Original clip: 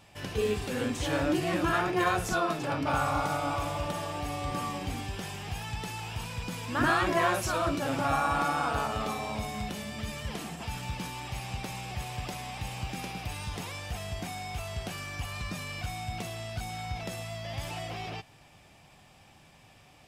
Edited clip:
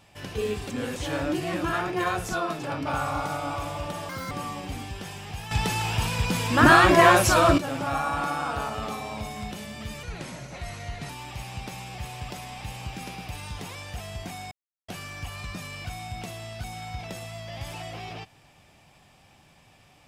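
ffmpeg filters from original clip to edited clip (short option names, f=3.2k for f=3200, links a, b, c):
-filter_complex "[0:a]asplit=11[a][b][c][d][e][f][g][h][i][j][k];[a]atrim=end=0.702[l];[b]atrim=start=0.698:end=0.962,asetpts=PTS-STARTPTS,areverse[m];[c]atrim=start=0.958:end=4.094[n];[d]atrim=start=4.09:end=4.49,asetpts=PTS-STARTPTS,asetrate=79821,aresample=44100[o];[e]atrim=start=4.486:end=5.692[p];[f]atrim=start=5.688:end=7.762,asetpts=PTS-STARTPTS,volume=10.5dB[q];[g]atrim=start=7.758:end=10.214[r];[h]atrim=start=10.21:end=11.06,asetpts=PTS-STARTPTS,asetrate=35280,aresample=44100,atrim=end_sample=46856,asetpts=PTS-STARTPTS[s];[i]atrim=start=11.056:end=14.48,asetpts=PTS-STARTPTS,afade=t=out:st=3.42:d=0.004:c=hsin[t];[j]atrim=start=14.48:end=14.85,asetpts=PTS-STARTPTS,volume=0[u];[k]atrim=start=14.85,asetpts=PTS-STARTPTS,afade=t=in:d=0.004:c=hsin[v];[l][m]acrossfade=d=0.004:c1=hsin:c2=hsin[w];[w][n]acrossfade=d=0.004:c1=hsin:c2=hsin[x];[x][o]acrossfade=d=0.004:c1=hsin:c2=hsin[y];[y][p]acrossfade=d=0.004:c1=hsin:c2=hsin[z];[z][q]acrossfade=d=0.004:c1=hsin:c2=hsin[aa];[aa][r]acrossfade=d=0.004:c1=hsin:c2=hsin[ab];[ab][s]acrossfade=d=0.004:c1=hsin:c2=hsin[ac];[t][u][v]concat=n=3:v=0:a=1[ad];[ac][ad]acrossfade=d=0.004:c1=hsin:c2=hsin"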